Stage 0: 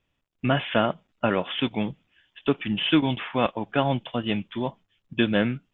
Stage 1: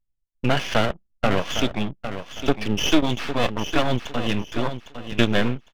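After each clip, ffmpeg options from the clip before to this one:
-af "aeval=exprs='max(val(0),0)':c=same,anlmdn=0.00398,aecho=1:1:806|1612|2418:0.316|0.0791|0.0198,volume=2.24"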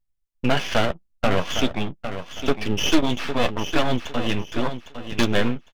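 -filter_complex "[0:a]aeval=exprs='0.447*(abs(mod(val(0)/0.447+3,4)-2)-1)':c=same,asplit=2[s0][s1];[s1]adelay=12,volume=0.299[s2];[s0][s2]amix=inputs=2:normalize=0"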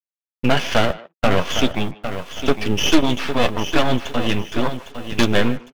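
-filter_complex "[0:a]acrusher=bits=7:mix=0:aa=0.5,asplit=2[s0][s1];[s1]adelay=150,highpass=300,lowpass=3400,asoftclip=type=hard:threshold=0.211,volume=0.126[s2];[s0][s2]amix=inputs=2:normalize=0,volume=1.5"

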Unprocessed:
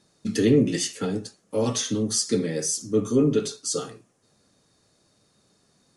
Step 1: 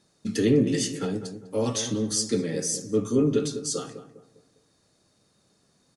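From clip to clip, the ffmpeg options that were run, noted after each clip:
-filter_complex "[0:a]asplit=2[s0][s1];[s1]adelay=201,lowpass=f=980:p=1,volume=0.335,asplit=2[s2][s3];[s3]adelay=201,lowpass=f=980:p=1,volume=0.41,asplit=2[s4][s5];[s5]adelay=201,lowpass=f=980:p=1,volume=0.41,asplit=2[s6][s7];[s7]adelay=201,lowpass=f=980:p=1,volume=0.41[s8];[s0][s2][s4][s6][s8]amix=inputs=5:normalize=0,volume=0.794"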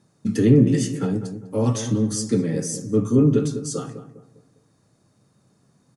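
-af "equalizer=f=125:t=o:w=1:g=11,equalizer=f=250:t=o:w=1:g=4,equalizer=f=1000:t=o:w=1:g=4,equalizer=f=4000:t=o:w=1:g=-6"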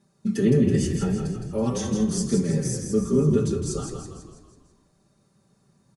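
-filter_complex "[0:a]aecho=1:1:5.1:0.83,asplit=2[s0][s1];[s1]asplit=6[s2][s3][s4][s5][s6][s7];[s2]adelay=164,afreqshift=-34,volume=0.501[s8];[s3]adelay=328,afreqshift=-68,volume=0.257[s9];[s4]adelay=492,afreqshift=-102,volume=0.13[s10];[s5]adelay=656,afreqshift=-136,volume=0.0668[s11];[s6]adelay=820,afreqshift=-170,volume=0.0339[s12];[s7]adelay=984,afreqshift=-204,volume=0.0174[s13];[s8][s9][s10][s11][s12][s13]amix=inputs=6:normalize=0[s14];[s0][s14]amix=inputs=2:normalize=0,volume=0.531"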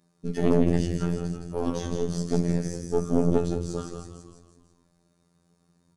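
-filter_complex "[0:a]acrossover=split=5300[s0][s1];[s1]acompressor=threshold=0.00398:ratio=4:attack=1:release=60[s2];[s0][s2]amix=inputs=2:normalize=0,aeval=exprs='0.422*(cos(1*acos(clip(val(0)/0.422,-1,1)))-cos(1*PI/2))+0.0944*(cos(4*acos(clip(val(0)/0.422,-1,1)))-cos(4*PI/2))':c=same,afftfilt=real='hypot(re,im)*cos(PI*b)':imag='0':win_size=2048:overlap=0.75"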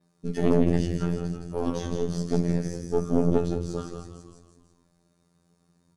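-af "adynamicequalizer=threshold=0.00126:dfrequency=8100:dqfactor=1.3:tfrequency=8100:tqfactor=1.3:attack=5:release=100:ratio=0.375:range=3:mode=cutabove:tftype=bell"

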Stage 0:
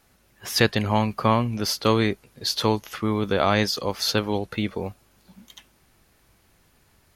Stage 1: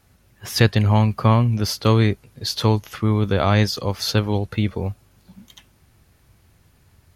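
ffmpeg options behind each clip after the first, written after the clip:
-af "equalizer=f=92:w=0.81:g=11.5"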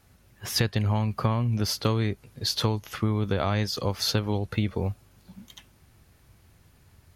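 -af "acompressor=threshold=0.112:ratio=10,volume=0.841"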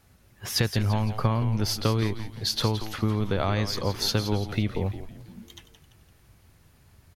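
-filter_complex "[0:a]asplit=6[s0][s1][s2][s3][s4][s5];[s1]adelay=170,afreqshift=-110,volume=0.299[s6];[s2]adelay=340,afreqshift=-220,volume=0.135[s7];[s3]adelay=510,afreqshift=-330,volume=0.0603[s8];[s4]adelay=680,afreqshift=-440,volume=0.0272[s9];[s5]adelay=850,afreqshift=-550,volume=0.0123[s10];[s0][s6][s7][s8][s9][s10]amix=inputs=6:normalize=0"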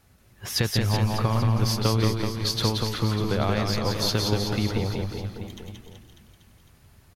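-af "aecho=1:1:180|378|595.8|835.4|1099:0.631|0.398|0.251|0.158|0.1"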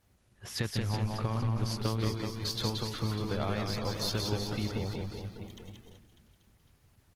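-af "volume=0.398" -ar 48000 -c:a libopus -b:a 16k

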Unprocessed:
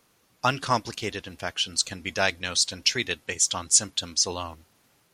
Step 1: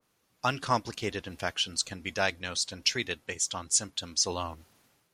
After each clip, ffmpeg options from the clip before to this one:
-af "dynaudnorm=f=100:g=9:m=4.22,adynamicequalizer=threshold=0.02:dfrequency=1900:dqfactor=0.7:tfrequency=1900:tqfactor=0.7:attack=5:release=100:ratio=0.375:range=3:mode=cutabove:tftype=highshelf,volume=0.376"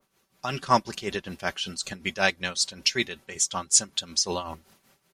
-af "tremolo=f=5.3:d=0.71,aecho=1:1:5.2:0.48,volume=2"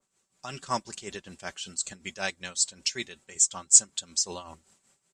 -af "lowpass=f=7800:t=q:w=8.5,volume=0.355"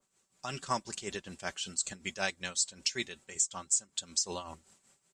-af "acompressor=threshold=0.0501:ratio=20"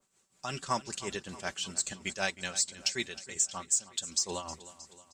-filter_complex "[0:a]aecho=1:1:313|626|939|1252|1565:0.141|0.0777|0.0427|0.0235|0.0129,asplit=2[s0][s1];[s1]asoftclip=type=tanh:threshold=0.0251,volume=0.299[s2];[s0][s2]amix=inputs=2:normalize=0"

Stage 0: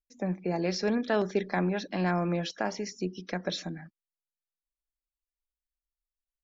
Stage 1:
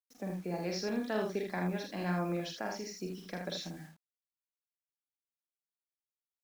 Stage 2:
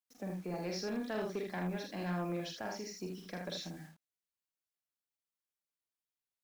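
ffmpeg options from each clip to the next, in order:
-filter_complex "[0:a]acrusher=bits=8:mix=0:aa=0.000001,bass=f=250:g=1,treble=f=4000:g=3,asplit=2[s0][s1];[s1]aecho=0:1:46|78:0.596|0.531[s2];[s0][s2]amix=inputs=2:normalize=0,volume=0.376"
-af "asoftclip=type=tanh:threshold=0.0398,volume=0.841"

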